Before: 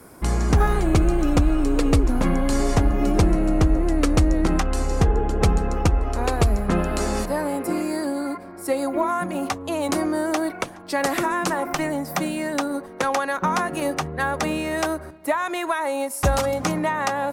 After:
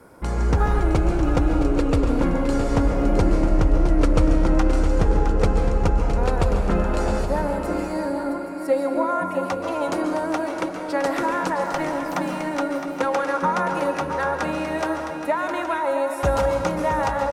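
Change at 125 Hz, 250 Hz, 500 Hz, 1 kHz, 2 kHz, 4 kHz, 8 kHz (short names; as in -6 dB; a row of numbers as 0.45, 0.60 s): -1.0, -0.5, +2.0, +0.5, -1.5, -4.5, -8.0 dB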